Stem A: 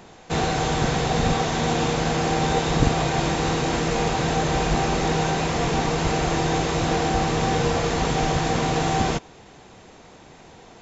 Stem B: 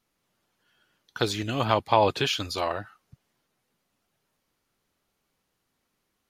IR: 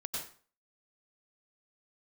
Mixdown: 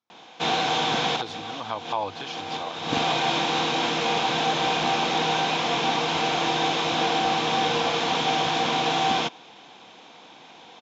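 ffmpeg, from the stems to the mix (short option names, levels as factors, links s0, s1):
-filter_complex "[0:a]equalizer=f=3000:t=o:w=0.88:g=11,adelay=100,volume=1.41[s0];[1:a]equalizer=f=98:t=o:w=0.3:g=15,volume=0.631,asplit=2[s1][s2];[s2]apad=whole_len=481186[s3];[s0][s3]sidechaincompress=threshold=0.0126:ratio=12:attack=6:release=188[s4];[s4][s1]amix=inputs=2:normalize=0,highpass=340,equalizer=f=400:t=q:w=4:g=-10,equalizer=f=590:t=q:w=4:g=-6,equalizer=f=1300:t=q:w=4:g=-4,equalizer=f=1900:t=q:w=4:g=-9,equalizer=f=2800:t=q:w=4:g=-8,equalizer=f=4500:t=q:w=4:g=-6,lowpass=f=5300:w=0.5412,lowpass=f=5300:w=1.3066"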